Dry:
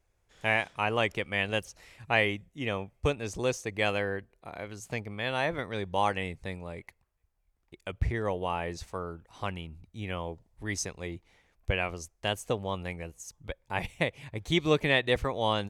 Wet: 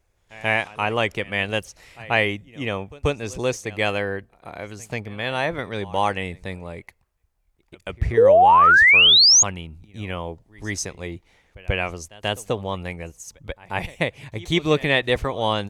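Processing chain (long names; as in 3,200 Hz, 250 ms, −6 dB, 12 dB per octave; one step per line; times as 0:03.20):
echo ahead of the sound 136 ms −21 dB
sound drawn into the spectrogram rise, 0:08.17–0:09.43, 430–6,900 Hz −18 dBFS
level +5.5 dB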